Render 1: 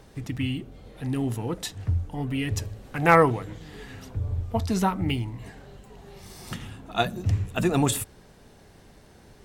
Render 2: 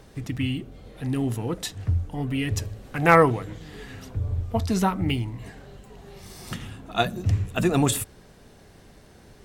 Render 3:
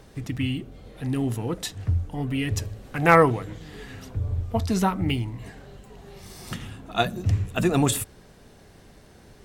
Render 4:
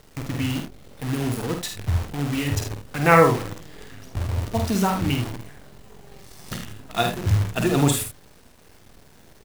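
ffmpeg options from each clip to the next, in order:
ffmpeg -i in.wav -af "equalizer=frequency=880:width=6.6:gain=-3,volume=1.5dB" out.wav
ffmpeg -i in.wav -af anull out.wav
ffmpeg -i in.wav -filter_complex "[0:a]acrusher=bits=6:dc=4:mix=0:aa=0.000001,asplit=2[link_01][link_02];[link_02]aecho=0:1:49|77:0.531|0.355[link_03];[link_01][link_03]amix=inputs=2:normalize=0" out.wav

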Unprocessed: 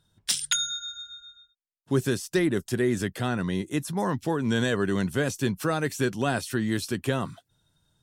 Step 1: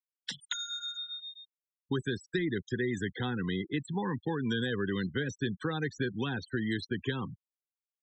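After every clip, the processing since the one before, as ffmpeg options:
ffmpeg -i in.wav -filter_complex "[0:a]acrossover=split=230|980|2300[link_01][link_02][link_03][link_04];[link_01]acompressor=threshold=-36dB:ratio=4[link_05];[link_02]acompressor=threshold=-34dB:ratio=4[link_06];[link_03]acompressor=threshold=-46dB:ratio=4[link_07];[link_04]acompressor=threshold=-42dB:ratio=4[link_08];[link_05][link_06][link_07][link_08]amix=inputs=4:normalize=0,superequalizer=8b=0.251:11b=1.58:13b=1.58:16b=0.398,afftfilt=real='re*gte(hypot(re,im),0.0178)':imag='im*gte(hypot(re,im),0.0178)':win_size=1024:overlap=0.75" out.wav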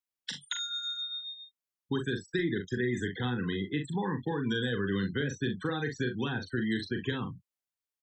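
ffmpeg -i in.wav -af "aecho=1:1:41|63:0.501|0.133" out.wav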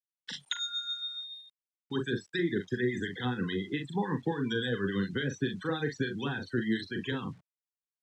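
ffmpeg -i in.wav -filter_complex "[0:a]acrossover=split=1500[link_01][link_02];[link_01]aeval=exprs='val(0)*(1-0.7/2+0.7/2*cos(2*PI*7*n/s))':channel_layout=same[link_03];[link_02]aeval=exprs='val(0)*(1-0.7/2-0.7/2*cos(2*PI*7*n/s))':channel_layout=same[link_04];[link_03][link_04]amix=inputs=2:normalize=0,acrusher=bits=10:mix=0:aa=0.000001,highpass=110,lowpass=6800,volume=3.5dB" out.wav

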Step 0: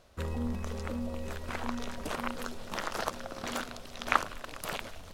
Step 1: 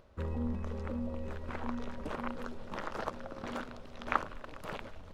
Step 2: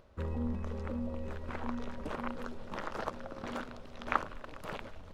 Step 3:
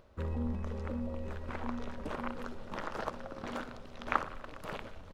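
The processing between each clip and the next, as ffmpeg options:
ffmpeg -i in.wav -af "lowpass=frequency=1200:poles=1,bandreject=frequency=700:width=12,acompressor=mode=upward:threshold=-55dB:ratio=2.5,volume=-1dB" out.wav
ffmpeg -i in.wav -af anull out.wav
ffmpeg -i in.wav -af "aecho=1:1:61|122|183|244|305|366:0.158|0.0919|0.0533|0.0309|0.0179|0.0104" out.wav

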